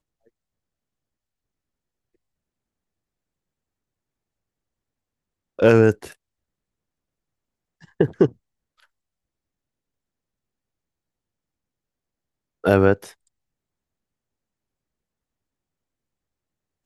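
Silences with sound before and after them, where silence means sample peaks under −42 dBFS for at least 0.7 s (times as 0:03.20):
0:06.13–0:07.82
0:08.83–0:12.64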